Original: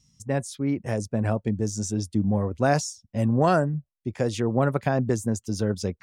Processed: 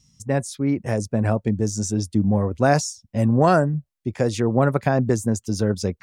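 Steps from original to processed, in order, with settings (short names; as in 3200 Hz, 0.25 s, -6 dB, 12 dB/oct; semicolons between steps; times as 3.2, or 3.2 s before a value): dynamic EQ 3100 Hz, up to -5 dB, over -55 dBFS, Q 4.2; gain +4 dB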